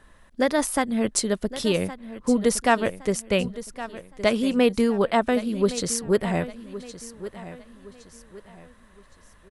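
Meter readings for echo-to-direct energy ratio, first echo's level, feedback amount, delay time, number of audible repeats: -14.0 dB, -14.5 dB, 35%, 1.115 s, 3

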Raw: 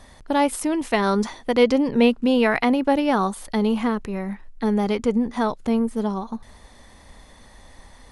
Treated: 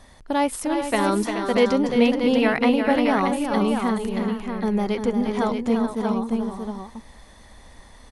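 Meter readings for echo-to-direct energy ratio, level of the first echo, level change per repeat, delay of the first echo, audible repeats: -2.5 dB, -7.0 dB, no steady repeat, 0.349 s, 3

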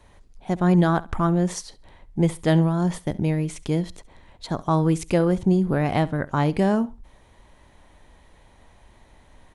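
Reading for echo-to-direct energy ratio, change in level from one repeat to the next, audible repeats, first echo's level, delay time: -20.0 dB, -13.0 dB, 2, -20.0 dB, 68 ms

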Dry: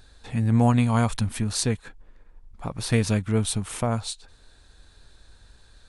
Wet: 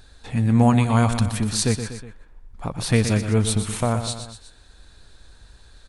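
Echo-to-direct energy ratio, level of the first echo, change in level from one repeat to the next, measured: -8.0 dB, -9.5 dB, -5.0 dB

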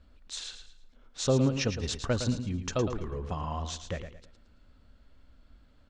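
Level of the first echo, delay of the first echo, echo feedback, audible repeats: -9.0 dB, 0.111 s, 32%, 3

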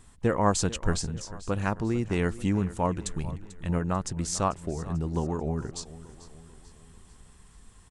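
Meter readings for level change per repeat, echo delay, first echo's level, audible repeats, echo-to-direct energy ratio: -6.5 dB, 0.442 s, -17.0 dB, 3, -16.0 dB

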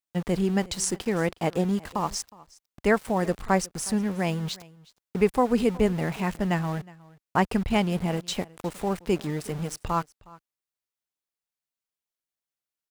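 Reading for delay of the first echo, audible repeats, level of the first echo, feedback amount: 0.364 s, 1, -22.5 dB, no steady repeat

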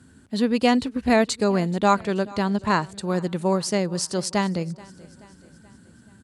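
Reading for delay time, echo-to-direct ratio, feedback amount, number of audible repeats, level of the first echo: 0.43 s, -20.5 dB, 52%, 3, -22.0 dB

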